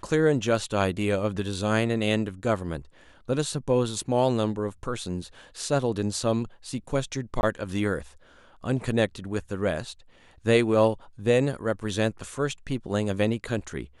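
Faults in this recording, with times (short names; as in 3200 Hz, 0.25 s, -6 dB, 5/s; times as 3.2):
7.41–7.43 gap 21 ms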